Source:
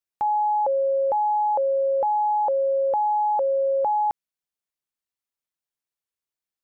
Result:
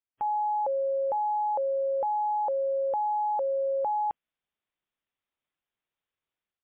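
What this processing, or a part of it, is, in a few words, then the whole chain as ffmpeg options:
low-bitrate web radio: -af "dynaudnorm=f=110:g=5:m=3.35,alimiter=limit=0.112:level=0:latency=1,volume=0.562" -ar 8000 -c:a libmp3lame -b:a 24k

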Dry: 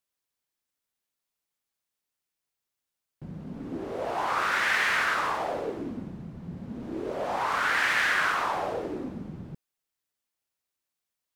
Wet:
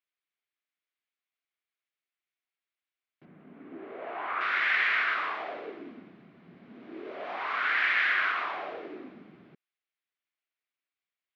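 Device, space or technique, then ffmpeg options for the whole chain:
phone earpiece: -filter_complex "[0:a]highpass=400,equalizer=f=520:t=q:w=4:g=-9,equalizer=f=890:t=q:w=4:g=-9,equalizer=f=2200:t=q:w=4:g=5,lowpass=f=3700:w=0.5412,lowpass=f=3700:w=1.3066,asettb=1/sr,asplit=3[s0][s1][s2];[s0]atrim=end=3.254[s3];[s1]atrim=start=3.25:end=4.41,asetpts=PTS-STARTPTS,afade=t=in:d=0.004:c=qsin,afade=t=out:st=1.156:d=0.004:c=qsin,lowpass=2300[s4];[s2]atrim=start=4.406[s5];[s3][s4]acrossfade=d=0.004:c1=hsin:c2=qsin[s6];[s6][s5]acrossfade=d=0.004:c1=qsin:c2=hsin,volume=0.794"

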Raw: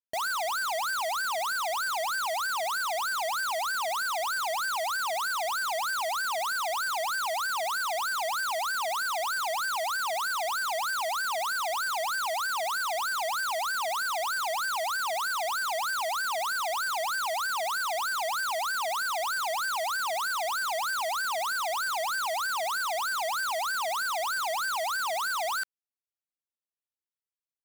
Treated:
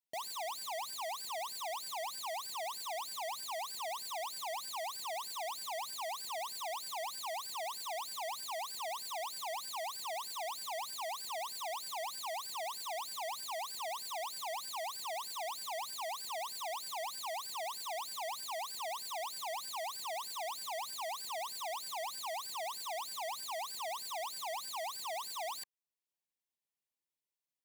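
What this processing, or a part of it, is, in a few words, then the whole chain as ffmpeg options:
PA system with an anti-feedback notch: -af "highpass=110,asuperstop=centerf=1400:order=8:qfactor=2.3,alimiter=level_in=3.55:limit=0.0631:level=0:latency=1:release=446,volume=0.282"

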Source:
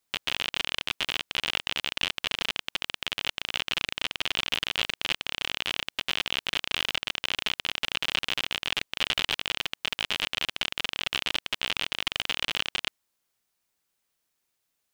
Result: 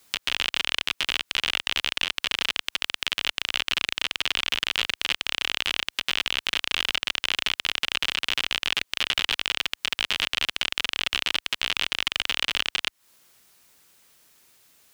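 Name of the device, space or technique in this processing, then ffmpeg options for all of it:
mastering chain: -filter_complex "[0:a]highpass=f=41:p=1,equalizer=f=750:t=o:w=0.77:g=-2,acrossover=split=860|2300[s0][s1][s2];[s0]acompressor=threshold=0.00178:ratio=4[s3];[s1]acompressor=threshold=0.00708:ratio=4[s4];[s2]acompressor=threshold=0.0112:ratio=4[s5];[s3][s4][s5]amix=inputs=3:normalize=0,acompressor=threshold=0.00708:ratio=2,alimiter=level_in=21.1:limit=0.891:release=50:level=0:latency=1,volume=0.473"

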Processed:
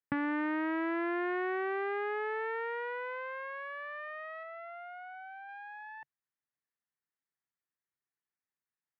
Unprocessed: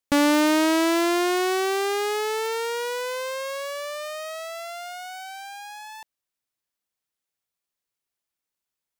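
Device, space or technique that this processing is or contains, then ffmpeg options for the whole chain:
bass amplifier: -filter_complex "[0:a]asettb=1/sr,asplit=3[s0][s1][s2];[s0]atrim=end=4.434[s3];[s1]atrim=start=4.43:end=5.49,asetpts=PTS-STARTPTS,afade=t=in:d=0.004:c=qsin,afade=t=out:st=1.056:d=0.004:c=qsin,highshelf=f=3400:g=-10.5[s4];[s2]atrim=start=5.486[s5];[s3][s4]acrossfade=d=0.004:c1=hsin:c2=qsin[s6];[s6][s5]acrossfade=d=0.004:c1=qsin:c2=hsin,acompressor=threshold=0.0708:ratio=5,highpass=87,equalizer=f=140:t=q:w=4:g=5,equalizer=f=570:t=q:w=4:g=-9,equalizer=f=1800:t=q:w=4:g=7,lowpass=f=2100:w=0.5412,lowpass=f=2100:w=1.3066,volume=0.447"

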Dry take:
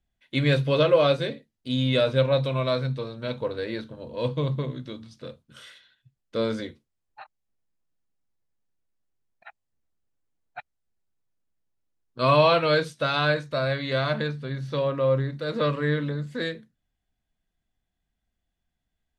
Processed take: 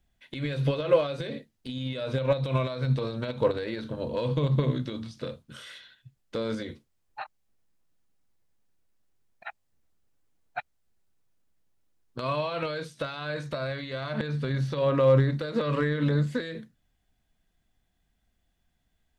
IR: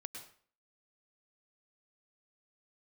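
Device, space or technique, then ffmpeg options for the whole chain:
de-esser from a sidechain: -filter_complex "[0:a]asplit=2[s0][s1];[s1]highpass=6500,apad=whole_len=846137[s2];[s0][s2]sidechaincompress=threshold=0.00126:ratio=8:attack=1.6:release=80,volume=2.24"

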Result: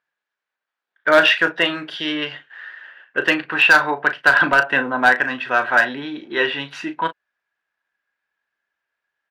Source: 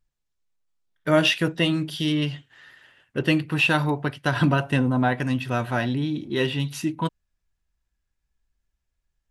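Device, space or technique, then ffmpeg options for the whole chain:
megaphone: -filter_complex "[0:a]highpass=580,lowpass=2700,equalizer=f=1600:t=o:w=0.37:g=9.5,asoftclip=type=hard:threshold=0.188,asplit=2[s0][s1];[s1]adelay=36,volume=0.282[s2];[s0][s2]amix=inputs=2:normalize=0,volume=2.66"

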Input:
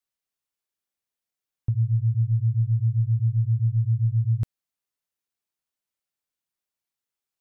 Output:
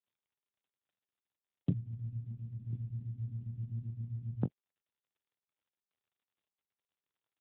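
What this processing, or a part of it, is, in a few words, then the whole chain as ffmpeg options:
mobile call with aggressive noise cancelling: -filter_complex "[0:a]asettb=1/sr,asplit=3[s0][s1][s2];[s0]atrim=end=1.694[s3];[s1]atrim=start=1.69:end=2.73,asetpts=PTS-STARTPTS,afade=t=in:d=0.004:c=qsin,afade=t=out:st=1.036:d=0.004:c=qsin,adynamicequalizer=threshold=0.0158:dfrequency=180:dqfactor=1.7:tfrequency=180:tqfactor=1.7:attack=5:release=100:ratio=0.375:range=2:mode=cutabove:tftype=bell[s4];[s2]atrim=start=2.726[s5];[s3][s4]acrossfade=d=0.004:c1=hsin:c2=qsin[s6];[s6][s5]acrossfade=d=0.004:c1=qsin:c2=hsin,highpass=f=180:w=0.5412,highpass=f=180:w=1.3066,aecho=1:1:22|40:0.562|0.141,afftdn=nr=18:nf=-48,volume=2.99" -ar 8000 -c:a libopencore_amrnb -b:a 7950

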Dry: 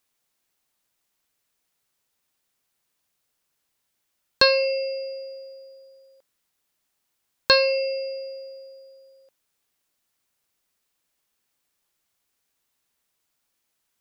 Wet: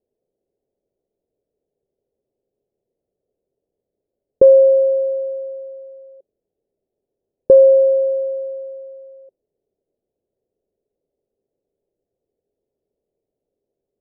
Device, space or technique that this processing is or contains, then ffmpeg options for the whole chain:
under water: -af "lowpass=f=850:w=0.5412,lowpass=f=850:w=1.3066,equalizer=f=400:t=o:w=0.3:g=9,lowshelf=f=790:t=q:w=3:g=13.5,volume=0.355"

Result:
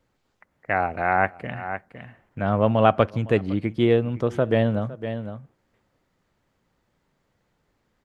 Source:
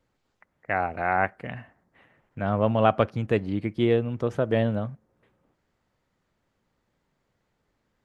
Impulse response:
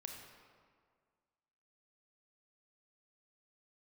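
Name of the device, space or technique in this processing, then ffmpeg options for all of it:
ducked delay: -filter_complex "[0:a]asplit=3[s0][s1][s2];[s1]adelay=509,volume=0.355[s3];[s2]apad=whole_len=377329[s4];[s3][s4]sidechaincompress=threshold=0.0112:ratio=4:attack=6.1:release=199[s5];[s0][s5]amix=inputs=2:normalize=0,volume=1.41"

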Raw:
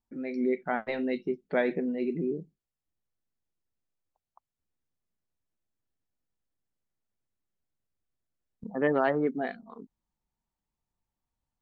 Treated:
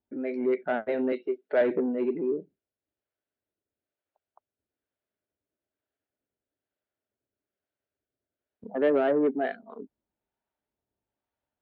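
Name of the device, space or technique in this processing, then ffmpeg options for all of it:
guitar amplifier with harmonic tremolo: -filter_complex "[0:a]asettb=1/sr,asplit=3[s0][s1][s2];[s0]atrim=end=1.124[s3];[s1]atrim=start=1.12:end=1.61,asetpts=PTS-STARTPTS,afade=t=in:d=0.004:c=qsin,afade=t=out:st=0.486:d=0.004:c=qsin,highpass=370[s4];[s2]atrim=start=1.606[s5];[s3][s4]acrossfade=d=0.004:c1=hsin:c2=qsin[s6];[s6][s5]acrossfade=d=0.004:c1=qsin:c2=hsin,acrossover=split=560[s7][s8];[s7]aeval=exprs='val(0)*(1-0.5/2+0.5/2*cos(2*PI*1.1*n/s))':c=same[s9];[s8]aeval=exprs='val(0)*(1-0.5/2-0.5/2*cos(2*PI*1.1*n/s))':c=same[s10];[s9][s10]amix=inputs=2:normalize=0,asoftclip=type=tanh:threshold=0.0447,highpass=79,equalizer=f=160:t=q:w=4:g=-8,equalizer=f=290:t=q:w=4:g=5,equalizer=f=410:t=q:w=4:g=8,equalizer=f=610:t=q:w=4:g=10,equalizer=f=1100:t=q:w=4:g=-3,equalizer=f=1500:t=q:w=4:g=6,lowpass=f=3600:w=0.5412,lowpass=f=3600:w=1.3066,volume=1.26"

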